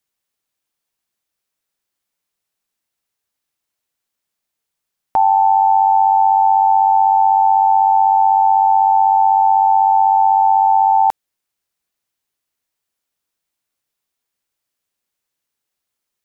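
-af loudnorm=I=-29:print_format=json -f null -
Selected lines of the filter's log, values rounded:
"input_i" : "-12.6",
"input_tp" : "-6.0",
"input_lra" : "5.5",
"input_thresh" : "-22.7",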